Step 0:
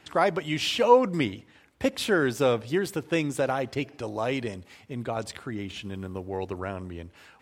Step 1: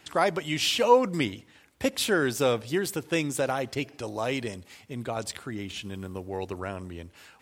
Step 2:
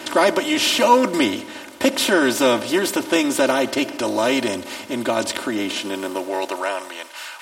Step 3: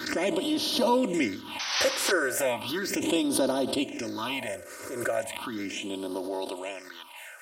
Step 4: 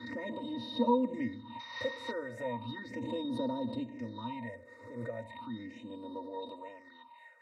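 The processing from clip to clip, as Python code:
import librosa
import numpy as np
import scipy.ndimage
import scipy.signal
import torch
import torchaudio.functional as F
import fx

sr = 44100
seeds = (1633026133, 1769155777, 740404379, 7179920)

y1 = fx.high_shelf(x, sr, hz=4200.0, db=9.0)
y1 = y1 * 10.0 ** (-1.5 / 20.0)
y2 = fx.bin_compress(y1, sr, power=0.6)
y2 = y2 + 0.94 * np.pad(y2, (int(3.3 * sr / 1000.0), 0))[:len(y2)]
y2 = fx.filter_sweep_highpass(y2, sr, from_hz=140.0, to_hz=1100.0, start_s=5.34, end_s=7.21, q=0.84)
y2 = y2 * 10.0 ** (2.5 / 20.0)
y3 = fx.phaser_stages(y2, sr, stages=6, low_hz=210.0, high_hz=2200.0, hz=0.36, feedback_pct=35)
y3 = fx.spec_paint(y3, sr, seeds[0], shape='noise', start_s=1.59, length_s=0.53, low_hz=720.0, high_hz=6200.0, level_db=-25.0)
y3 = fx.pre_swell(y3, sr, db_per_s=64.0)
y3 = y3 * 10.0 ** (-7.5 / 20.0)
y4 = fx.octave_resonator(y3, sr, note='A#', decay_s=0.1)
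y4 = y4 * 10.0 ** (2.5 / 20.0)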